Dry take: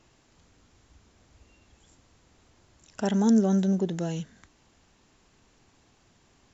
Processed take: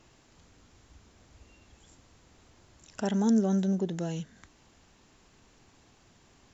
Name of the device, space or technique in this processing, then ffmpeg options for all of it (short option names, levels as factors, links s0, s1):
parallel compression: -filter_complex "[0:a]asplit=2[s0][s1];[s1]acompressor=threshold=0.00631:ratio=6,volume=0.944[s2];[s0][s2]amix=inputs=2:normalize=0,volume=0.631"